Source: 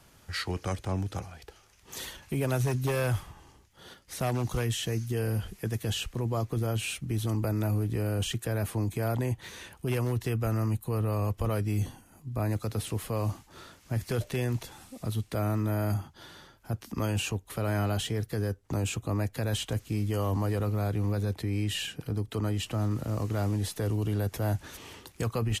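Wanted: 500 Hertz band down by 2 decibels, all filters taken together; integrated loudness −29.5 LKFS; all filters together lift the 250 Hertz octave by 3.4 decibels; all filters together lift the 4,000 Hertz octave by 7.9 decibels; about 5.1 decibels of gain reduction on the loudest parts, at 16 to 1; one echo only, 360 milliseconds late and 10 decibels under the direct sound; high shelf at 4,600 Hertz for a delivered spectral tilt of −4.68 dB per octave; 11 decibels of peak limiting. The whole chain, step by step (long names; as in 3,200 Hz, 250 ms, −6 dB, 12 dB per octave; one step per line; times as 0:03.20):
parametric band 250 Hz +5.5 dB
parametric band 500 Hz −4.5 dB
parametric band 4,000 Hz +8.5 dB
high-shelf EQ 4,600 Hz +5 dB
downward compressor 16 to 1, threshold −28 dBFS
brickwall limiter −30 dBFS
single-tap delay 360 ms −10 dB
level +9 dB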